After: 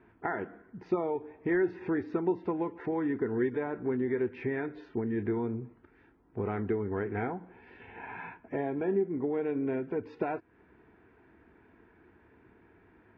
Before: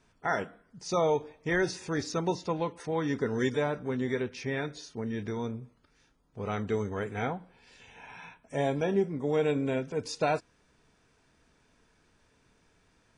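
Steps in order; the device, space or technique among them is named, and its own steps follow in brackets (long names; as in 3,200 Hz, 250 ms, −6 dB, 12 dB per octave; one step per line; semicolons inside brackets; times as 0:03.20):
bass amplifier (downward compressor 4 to 1, threshold −38 dBFS, peak gain reduction 13.5 dB; loudspeaker in its box 67–2,000 Hz, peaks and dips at 150 Hz −9 dB, 350 Hz +9 dB, 560 Hz −8 dB, 1,200 Hz −6 dB)
level +8 dB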